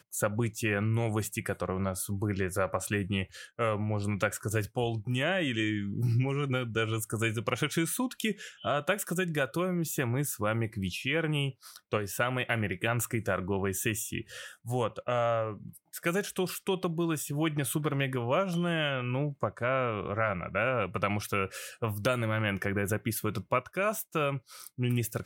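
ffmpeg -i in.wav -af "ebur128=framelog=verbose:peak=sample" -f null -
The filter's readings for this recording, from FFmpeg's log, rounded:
Integrated loudness:
  I:         -31.1 LUFS
  Threshold: -41.2 LUFS
Loudness range:
  LRA:         1.6 LU
  Threshold: -51.1 LUFS
  LRA low:   -32.0 LUFS
  LRA high:  -30.3 LUFS
Sample peak:
  Peak:      -12.2 dBFS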